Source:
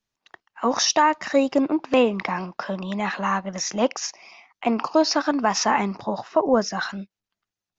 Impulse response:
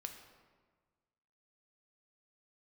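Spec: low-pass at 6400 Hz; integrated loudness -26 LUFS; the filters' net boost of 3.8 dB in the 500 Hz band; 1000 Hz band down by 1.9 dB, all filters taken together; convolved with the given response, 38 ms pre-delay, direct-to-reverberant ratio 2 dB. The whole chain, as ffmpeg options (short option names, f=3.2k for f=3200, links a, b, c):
-filter_complex "[0:a]lowpass=6.4k,equalizer=f=500:t=o:g=5.5,equalizer=f=1k:t=o:g=-4,asplit=2[a][b];[1:a]atrim=start_sample=2205,adelay=38[c];[b][c]afir=irnorm=-1:irlink=0,volume=1dB[d];[a][d]amix=inputs=2:normalize=0,volume=-6dB"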